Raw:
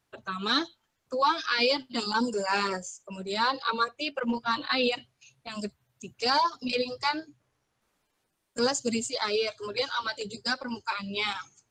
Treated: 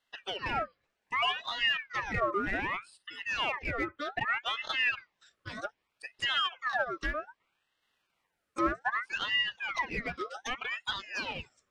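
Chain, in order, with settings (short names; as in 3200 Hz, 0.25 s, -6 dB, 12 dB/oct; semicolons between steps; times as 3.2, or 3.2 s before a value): treble ducked by the level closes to 1000 Hz, closed at -24.5 dBFS; Chebyshev high-pass 240 Hz, order 5; high shelf 2600 Hz -11.5 dB; in parallel at -5.5 dB: overloaded stage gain 35 dB; on the sum: ring modulator with a swept carrier 1600 Hz, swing 50%, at 0.64 Hz; gain +1 dB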